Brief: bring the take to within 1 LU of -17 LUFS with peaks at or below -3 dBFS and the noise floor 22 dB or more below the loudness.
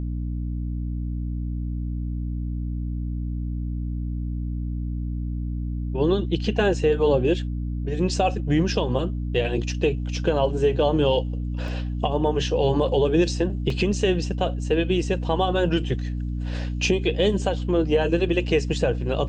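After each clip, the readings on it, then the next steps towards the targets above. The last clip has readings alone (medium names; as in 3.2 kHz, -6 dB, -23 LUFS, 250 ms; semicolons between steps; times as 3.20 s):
dropouts 2; longest dropout 2.1 ms; hum 60 Hz; highest harmonic 300 Hz; hum level -25 dBFS; loudness -24.5 LUFS; peak level -8.0 dBFS; loudness target -17.0 LUFS
-> interpolate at 11.68/13.70 s, 2.1 ms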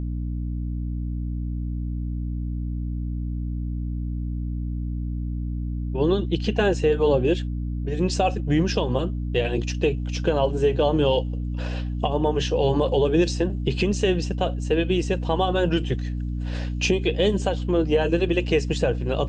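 dropouts 0; hum 60 Hz; highest harmonic 300 Hz; hum level -25 dBFS
-> de-hum 60 Hz, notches 5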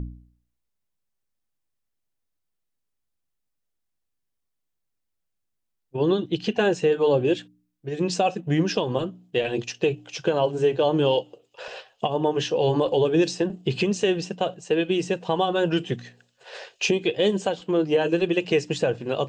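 hum not found; loudness -24.0 LUFS; peak level -9.0 dBFS; loudness target -17.0 LUFS
-> trim +7 dB; peak limiter -3 dBFS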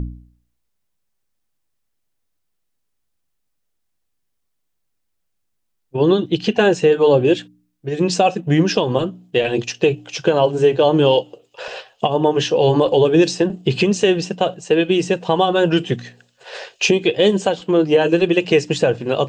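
loudness -17.0 LUFS; peak level -3.0 dBFS; noise floor -71 dBFS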